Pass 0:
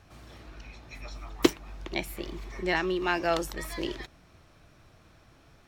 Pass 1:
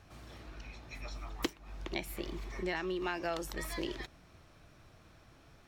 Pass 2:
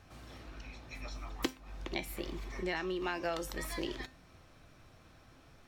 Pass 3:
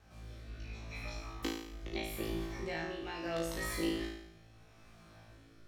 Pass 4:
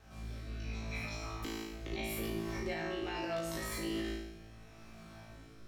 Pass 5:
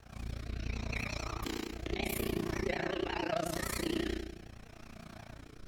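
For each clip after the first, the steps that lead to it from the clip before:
compression 4:1, threshold -31 dBFS, peak gain reduction 14.5 dB; trim -2 dB
feedback comb 260 Hz, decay 0.28 s, harmonics all, mix 60%; trim +7 dB
rotary cabinet horn 0.75 Hz; on a send: flutter echo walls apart 3.1 m, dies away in 0.78 s; on the sum: trim -3 dB
peak limiter -33.5 dBFS, peak gain reduction 10.5 dB; on a send at -4 dB: reverberation, pre-delay 3 ms; on the sum: trim +3 dB
AM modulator 30 Hz, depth 85%; vibrato 11 Hz 95 cents; trim +6.5 dB

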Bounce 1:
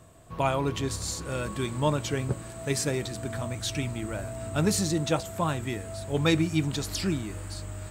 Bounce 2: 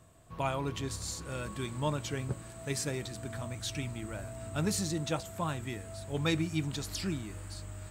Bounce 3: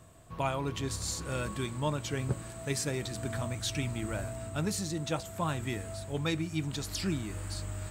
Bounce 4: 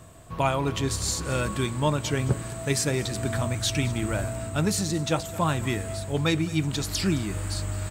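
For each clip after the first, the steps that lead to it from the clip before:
peaking EQ 450 Hz -2.5 dB 1.7 oct; trim -5.5 dB
gain riding within 4 dB 0.5 s; trim +1.5 dB
delay 216 ms -19 dB; trim +7.5 dB

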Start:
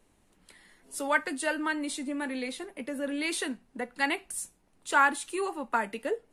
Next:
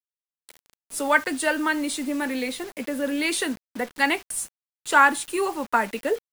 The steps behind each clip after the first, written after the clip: bit crusher 8-bit; trim +6.5 dB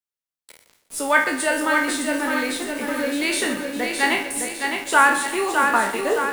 spectral sustain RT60 0.44 s; two-band feedback delay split 1 kHz, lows 160 ms, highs 121 ms, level -14.5 dB; bit-crushed delay 611 ms, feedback 55%, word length 7-bit, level -4.5 dB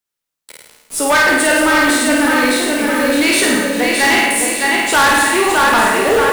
on a send: flutter echo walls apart 8.9 m, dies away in 0.86 s; on the sum: overload inside the chain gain 17.5 dB; trim +8.5 dB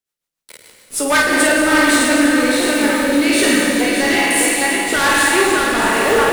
rotary cabinet horn 7 Hz, later 1.2 Hz, at 0.78 s; on a send at -4 dB: reverberation RT60 3.1 s, pre-delay 109 ms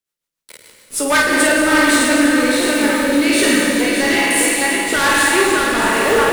band-stop 750 Hz, Q 12

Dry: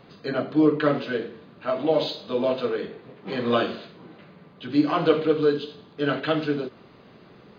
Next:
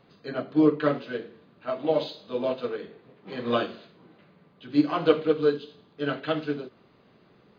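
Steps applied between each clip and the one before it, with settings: upward expansion 1.5:1, over -31 dBFS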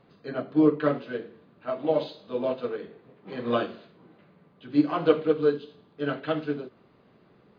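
treble shelf 3.3 kHz -8.5 dB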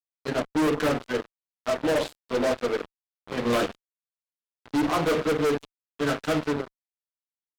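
fuzz box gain 32 dB, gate -37 dBFS; trim -7 dB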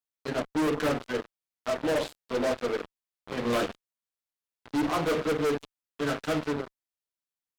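peak limiter -22.5 dBFS, peak gain reduction 4 dB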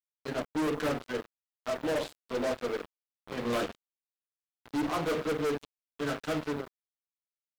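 bit crusher 9-bit; trim -3.5 dB

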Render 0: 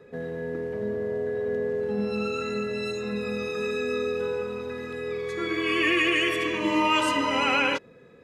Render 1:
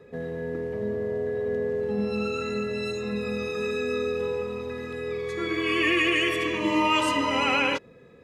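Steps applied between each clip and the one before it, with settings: peaking EQ 61 Hz +5.5 dB 1.7 oct; band-stop 1.5 kHz, Q 9.7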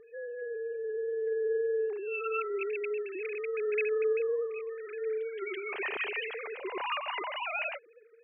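formants replaced by sine waves; trim -6.5 dB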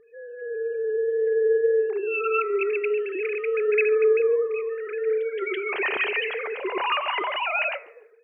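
flange 0.54 Hz, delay 7.7 ms, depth 8.2 ms, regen -89%; filtered feedback delay 142 ms, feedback 41%, low-pass 1.3 kHz, level -19.5 dB; level rider gain up to 10.5 dB; trim +3 dB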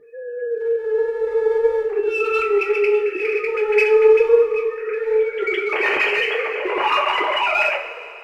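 in parallel at -5.5 dB: one-sided clip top -25.5 dBFS; on the sum: two-slope reverb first 0.29 s, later 3 s, from -18 dB, DRR -1.5 dB

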